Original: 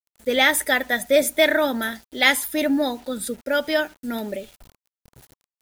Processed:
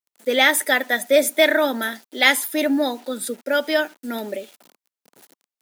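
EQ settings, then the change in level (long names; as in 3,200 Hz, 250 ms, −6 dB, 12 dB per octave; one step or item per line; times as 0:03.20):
high-pass filter 230 Hz 24 dB per octave
+1.5 dB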